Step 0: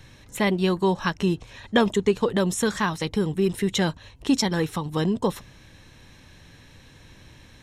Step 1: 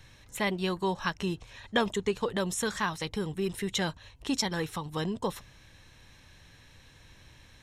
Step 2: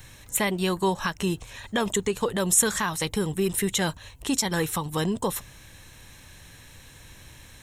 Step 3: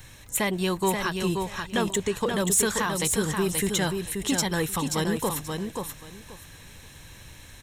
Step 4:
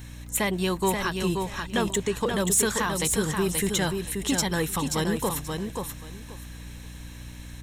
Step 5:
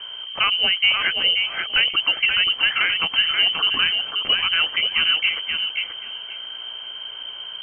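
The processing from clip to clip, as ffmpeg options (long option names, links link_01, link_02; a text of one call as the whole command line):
ffmpeg -i in.wav -af "equalizer=frequency=250:width_type=o:width=2.2:gain=-6,volume=-4dB" out.wav
ffmpeg -i in.wav -af "alimiter=limit=-21.5dB:level=0:latency=1:release=137,aexciter=amount=3.9:drive=3.2:freq=7000,volume=6.5dB" out.wav
ffmpeg -i in.wav -af "asoftclip=type=tanh:threshold=-14.5dB,aecho=1:1:531|1062|1593:0.562|0.107|0.0203" out.wav
ffmpeg -i in.wav -af "aeval=exprs='val(0)+0.01*(sin(2*PI*60*n/s)+sin(2*PI*2*60*n/s)/2+sin(2*PI*3*60*n/s)/3+sin(2*PI*4*60*n/s)/4+sin(2*PI*5*60*n/s)/5)':channel_layout=same" out.wav
ffmpeg -i in.wav -af "lowpass=frequency=2700:width_type=q:width=0.5098,lowpass=frequency=2700:width_type=q:width=0.6013,lowpass=frequency=2700:width_type=q:width=0.9,lowpass=frequency=2700:width_type=q:width=2.563,afreqshift=-3200,volume=6.5dB" out.wav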